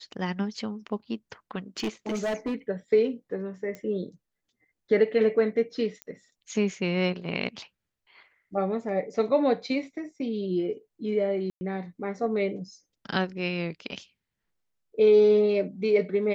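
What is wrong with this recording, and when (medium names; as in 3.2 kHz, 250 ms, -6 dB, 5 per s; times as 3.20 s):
1.77–2.54 s: clipped -25 dBFS
3.75 s: pop -24 dBFS
6.02 s: pop -22 dBFS
11.50–11.61 s: dropout 110 ms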